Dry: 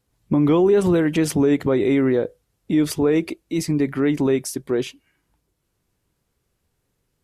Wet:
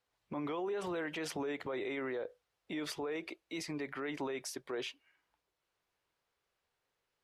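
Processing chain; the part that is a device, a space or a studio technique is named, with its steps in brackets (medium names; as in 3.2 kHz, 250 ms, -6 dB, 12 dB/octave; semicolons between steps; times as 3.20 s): DJ mixer with the lows and highs turned down (three-band isolator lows -19 dB, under 500 Hz, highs -13 dB, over 5.1 kHz; peak limiter -26.5 dBFS, peak gain reduction 11 dB); trim -4.5 dB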